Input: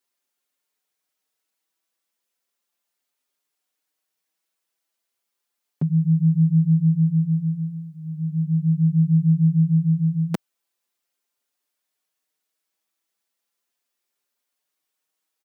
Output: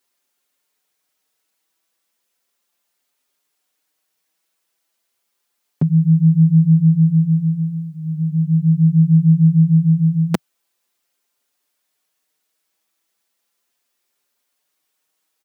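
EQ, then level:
dynamic equaliser 150 Hz, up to −3 dB, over −27 dBFS, Q 4.6
+7.5 dB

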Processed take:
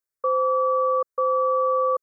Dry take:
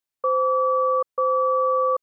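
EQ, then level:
phaser with its sweep stopped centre 800 Hz, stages 6
0.0 dB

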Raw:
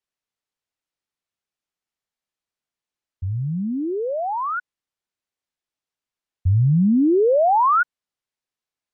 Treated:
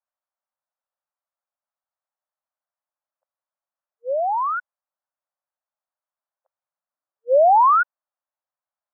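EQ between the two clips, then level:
linear-phase brick-wall high-pass 510 Hz
low-pass filter 1,400 Hz 24 dB per octave
+3.0 dB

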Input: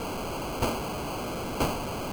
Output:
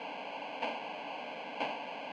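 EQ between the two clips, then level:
loudspeaker in its box 160–2,400 Hz, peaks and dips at 300 Hz +10 dB, 880 Hz +5 dB, 1,600 Hz +8 dB
first difference
phaser with its sweep stopped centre 350 Hz, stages 6
+13.5 dB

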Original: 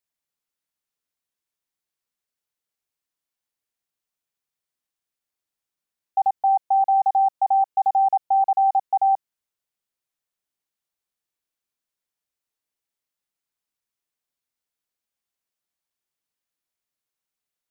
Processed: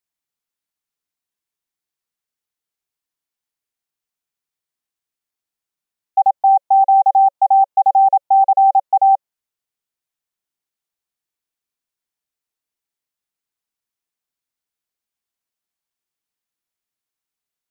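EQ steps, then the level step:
notch filter 560 Hz, Q 12
dynamic equaliser 780 Hz, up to +7 dB, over −32 dBFS, Q 1.5
0.0 dB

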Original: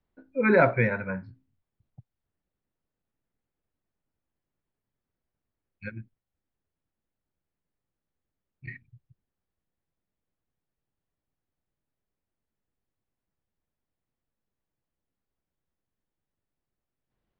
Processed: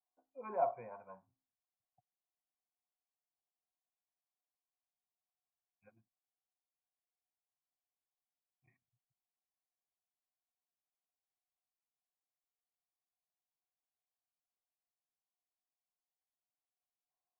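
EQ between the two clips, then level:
formant resonators in series a
low-shelf EQ 110 Hz −11 dB
−1.5 dB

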